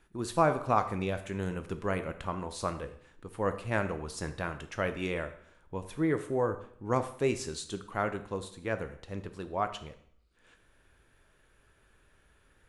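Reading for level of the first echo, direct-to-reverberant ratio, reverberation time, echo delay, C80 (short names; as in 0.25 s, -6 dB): none, 9.0 dB, 0.65 s, none, 15.0 dB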